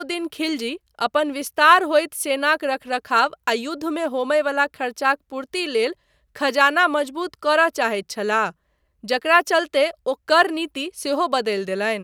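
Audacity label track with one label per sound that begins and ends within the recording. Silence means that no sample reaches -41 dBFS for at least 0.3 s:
6.350000	8.510000	sound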